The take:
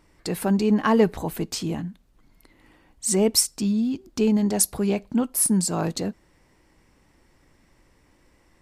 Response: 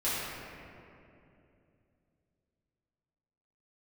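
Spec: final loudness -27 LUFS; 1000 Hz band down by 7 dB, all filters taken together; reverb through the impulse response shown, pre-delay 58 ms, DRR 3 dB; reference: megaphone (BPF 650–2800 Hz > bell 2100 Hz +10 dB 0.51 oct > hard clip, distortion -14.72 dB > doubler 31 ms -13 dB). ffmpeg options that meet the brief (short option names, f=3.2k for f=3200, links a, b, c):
-filter_complex "[0:a]equalizer=f=1k:t=o:g=-8,asplit=2[a][b];[1:a]atrim=start_sample=2205,adelay=58[c];[b][c]afir=irnorm=-1:irlink=0,volume=-12.5dB[d];[a][d]amix=inputs=2:normalize=0,highpass=650,lowpass=2.8k,equalizer=f=2.1k:t=o:w=0.51:g=10,asoftclip=type=hard:threshold=-23dB,asplit=2[e][f];[f]adelay=31,volume=-13dB[g];[e][g]amix=inputs=2:normalize=0,volume=7dB"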